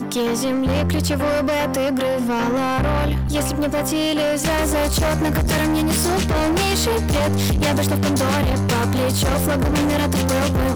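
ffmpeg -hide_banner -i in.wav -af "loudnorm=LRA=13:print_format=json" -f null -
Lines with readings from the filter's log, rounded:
"input_i" : "-19.3",
"input_tp" : "-11.5",
"input_lra" : "1.3",
"input_thresh" : "-29.3",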